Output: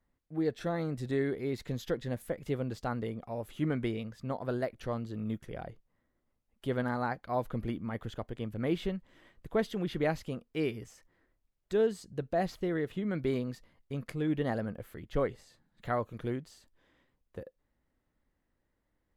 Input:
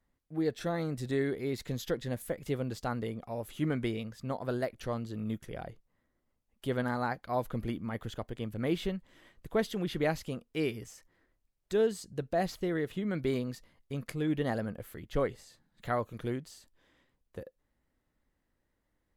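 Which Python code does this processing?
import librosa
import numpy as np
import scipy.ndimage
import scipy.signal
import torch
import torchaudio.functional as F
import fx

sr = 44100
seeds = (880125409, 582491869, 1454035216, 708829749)

y = fx.high_shelf(x, sr, hz=4200.0, db=-7.5)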